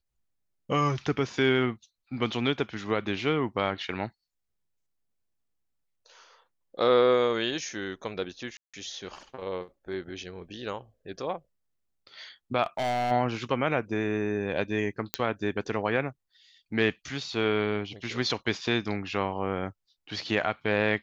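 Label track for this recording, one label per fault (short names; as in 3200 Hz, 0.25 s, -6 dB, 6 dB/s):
8.570000	8.740000	gap 0.166 s
12.630000	13.120000	clipped -25 dBFS
15.140000	15.140000	pop -7 dBFS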